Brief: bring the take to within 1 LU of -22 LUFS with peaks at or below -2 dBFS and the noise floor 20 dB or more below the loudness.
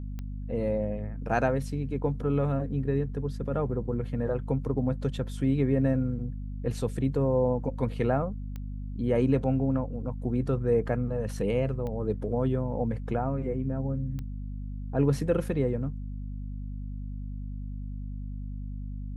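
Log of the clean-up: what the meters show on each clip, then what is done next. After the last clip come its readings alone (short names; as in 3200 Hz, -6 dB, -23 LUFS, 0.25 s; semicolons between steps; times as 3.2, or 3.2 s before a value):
clicks 4; hum 50 Hz; harmonics up to 250 Hz; hum level -33 dBFS; loudness -30.0 LUFS; peak -12.0 dBFS; loudness target -22.0 LUFS
-> de-click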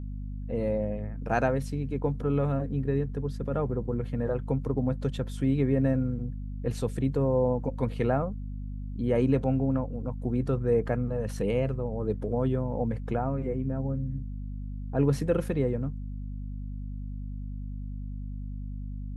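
clicks 0; hum 50 Hz; harmonics up to 250 Hz; hum level -33 dBFS
-> notches 50/100/150/200/250 Hz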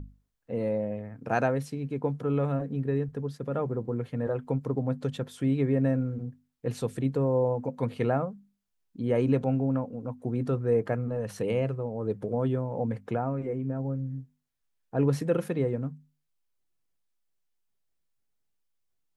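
hum none; loudness -30.0 LUFS; peak -12.5 dBFS; loudness target -22.0 LUFS
-> gain +8 dB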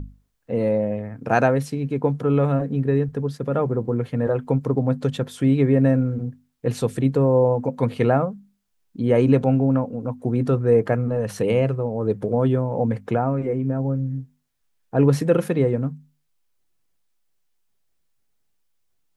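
loudness -22.0 LUFS; peak -4.5 dBFS; noise floor -69 dBFS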